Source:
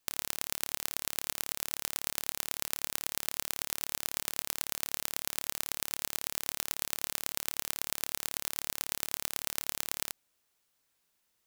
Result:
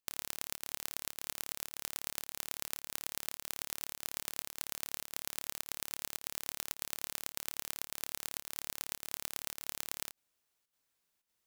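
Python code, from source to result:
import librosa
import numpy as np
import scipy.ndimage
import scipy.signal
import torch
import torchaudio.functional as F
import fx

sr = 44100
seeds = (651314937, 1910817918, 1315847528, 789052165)

y = fx.volume_shaper(x, sr, bpm=107, per_beat=1, depth_db=-9, release_ms=77.0, shape='slow start')
y = y * librosa.db_to_amplitude(-5.0)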